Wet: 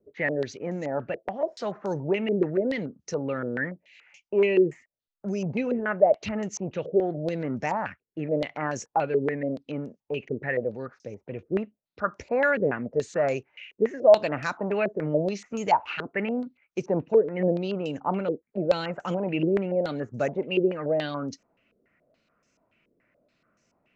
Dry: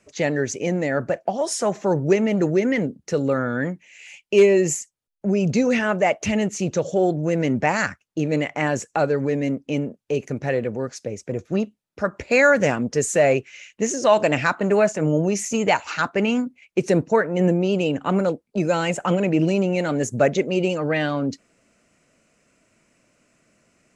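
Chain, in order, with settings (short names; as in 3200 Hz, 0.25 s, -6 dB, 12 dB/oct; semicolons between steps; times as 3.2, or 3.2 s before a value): air absorption 64 m; stepped low-pass 7 Hz 420–6000 Hz; gain -9 dB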